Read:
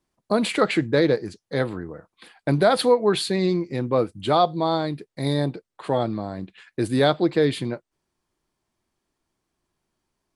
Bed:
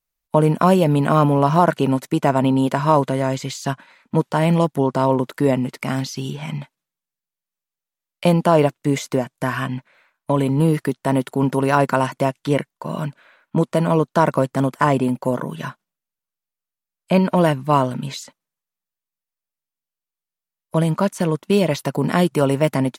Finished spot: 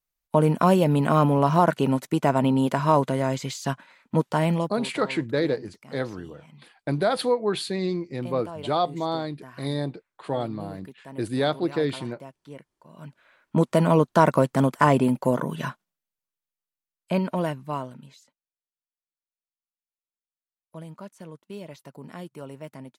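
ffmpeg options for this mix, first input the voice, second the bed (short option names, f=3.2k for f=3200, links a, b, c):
-filter_complex "[0:a]adelay=4400,volume=-5dB[a];[1:a]volume=18dB,afade=t=out:st=4.37:d=0.5:silence=0.105925,afade=t=in:st=12.96:d=0.72:silence=0.0794328,afade=t=out:st=15.74:d=2.38:silence=0.0944061[b];[a][b]amix=inputs=2:normalize=0"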